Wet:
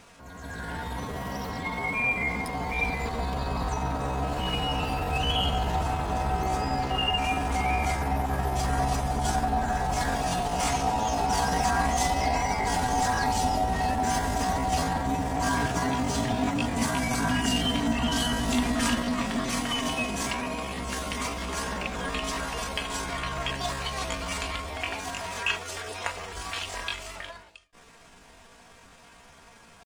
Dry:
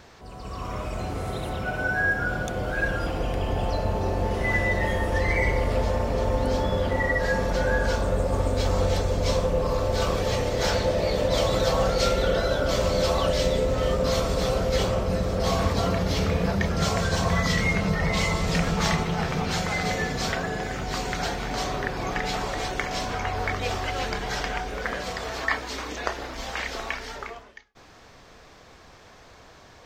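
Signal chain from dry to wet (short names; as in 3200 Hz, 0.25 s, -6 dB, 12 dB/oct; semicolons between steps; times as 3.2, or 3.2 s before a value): pitch shift +6.5 st; comb 4.3 ms, depth 46%; gain -3 dB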